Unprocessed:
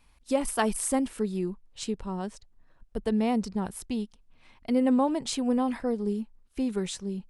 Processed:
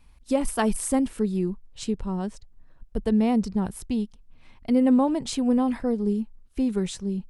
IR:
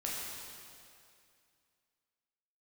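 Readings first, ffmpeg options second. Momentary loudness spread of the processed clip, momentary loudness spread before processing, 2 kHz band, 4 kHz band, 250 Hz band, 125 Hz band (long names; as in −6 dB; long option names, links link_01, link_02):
10 LU, 11 LU, 0.0 dB, 0.0 dB, +4.5 dB, +5.5 dB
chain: -af "lowshelf=frequency=270:gain=8.5"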